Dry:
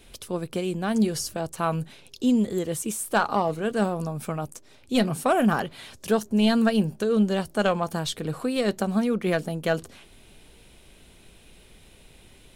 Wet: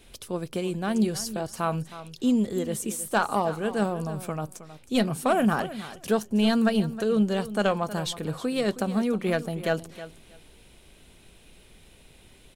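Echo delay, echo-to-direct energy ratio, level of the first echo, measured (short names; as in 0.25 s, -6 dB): 0.317 s, -14.5 dB, -14.5 dB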